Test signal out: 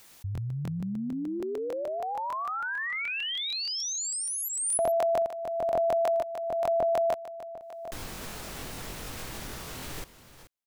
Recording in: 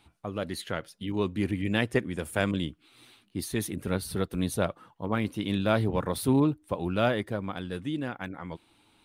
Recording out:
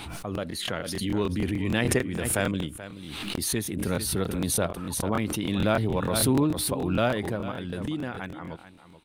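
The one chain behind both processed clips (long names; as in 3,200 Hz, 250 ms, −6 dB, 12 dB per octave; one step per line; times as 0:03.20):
single-tap delay 431 ms −14 dB
regular buffer underruns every 0.15 s, samples 1,024, repeat, from 0:00.33
background raised ahead of every attack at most 29 dB per second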